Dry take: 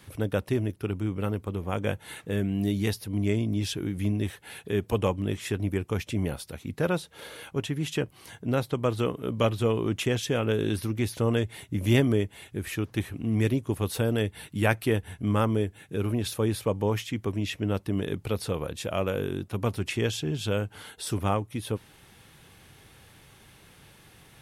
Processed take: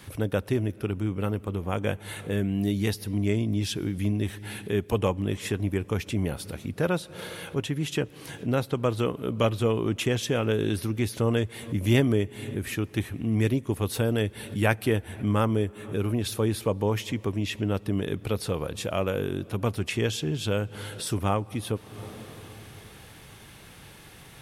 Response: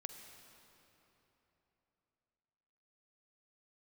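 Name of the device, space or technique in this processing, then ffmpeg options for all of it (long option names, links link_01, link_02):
ducked reverb: -filter_complex "[0:a]asplit=3[link_01][link_02][link_03];[1:a]atrim=start_sample=2205[link_04];[link_02][link_04]afir=irnorm=-1:irlink=0[link_05];[link_03]apad=whole_len=1076872[link_06];[link_05][link_06]sidechaincompress=threshold=-46dB:ratio=6:attack=40:release=193,volume=3dB[link_07];[link_01][link_07]amix=inputs=2:normalize=0"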